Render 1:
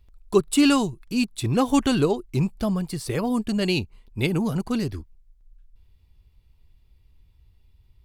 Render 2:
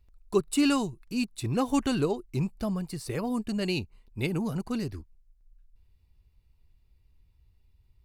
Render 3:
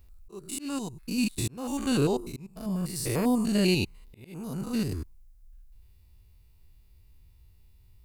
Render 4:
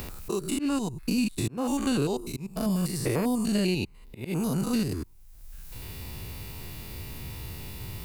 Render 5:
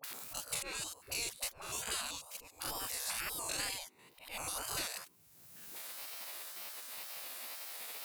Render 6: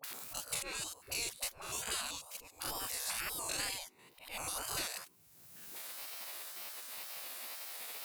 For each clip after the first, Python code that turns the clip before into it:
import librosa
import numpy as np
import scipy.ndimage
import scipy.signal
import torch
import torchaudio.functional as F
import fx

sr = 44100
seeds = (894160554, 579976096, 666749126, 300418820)

y1 = fx.notch(x, sr, hz=3300.0, q=8.5)
y1 = F.gain(torch.from_numpy(y1), -6.0).numpy()
y2 = fx.spec_steps(y1, sr, hold_ms=100)
y2 = fx.high_shelf(y2, sr, hz=7500.0, db=12.0)
y2 = fx.auto_swell(y2, sr, attack_ms=701.0)
y2 = F.gain(torch.from_numpy(y2), 7.0).numpy()
y3 = fx.band_squash(y2, sr, depth_pct=100)
y3 = F.gain(torch.from_numpy(y3), 1.0).numpy()
y4 = fx.dispersion(y3, sr, late='highs', ms=44.0, hz=630.0)
y4 = fx.spec_gate(y4, sr, threshold_db=-25, keep='weak')
y4 = fx.wow_flutter(y4, sr, seeds[0], rate_hz=2.1, depth_cents=110.0)
y4 = F.gain(torch.from_numpy(y4), 1.5).numpy()
y5 = fx.comb_fb(y4, sr, f0_hz=370.0, decay_s=0.22, harmonics='all', damping=0.0, mix_pct=30)
y5 = F.gain(torch.from_numpy(y5), 3.0).numpy()